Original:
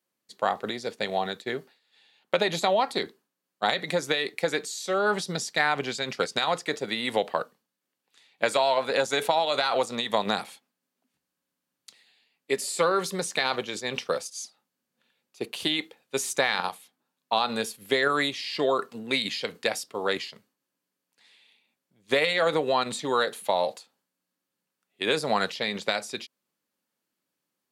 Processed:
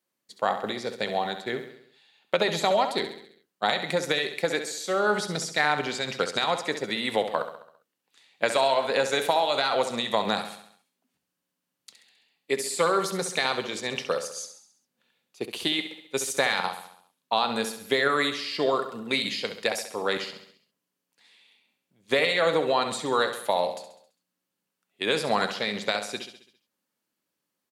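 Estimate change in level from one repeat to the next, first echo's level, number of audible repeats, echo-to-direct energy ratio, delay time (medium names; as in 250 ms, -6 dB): -5.5 dB, -10.0 dB, 5, -8.5 dB, 67 ms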